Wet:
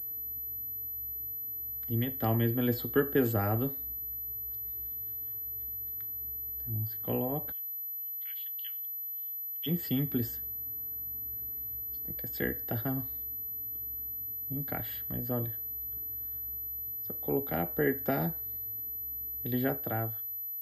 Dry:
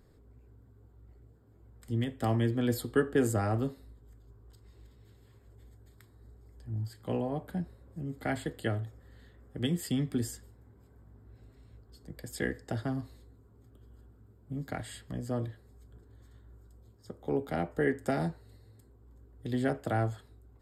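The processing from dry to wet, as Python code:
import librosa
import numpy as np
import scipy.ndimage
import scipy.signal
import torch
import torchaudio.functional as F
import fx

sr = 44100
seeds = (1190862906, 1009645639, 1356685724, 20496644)

y = fx.fade_out_tail(x, sr, length_s=1.03)
y = fx.ladder_highpass(y, sr, hz=2700.0, resonance_pct=65, at=(7.51, 9.66), fade=0.02)
y = fx.pwm(y, sr, carrier_hz=12000.0)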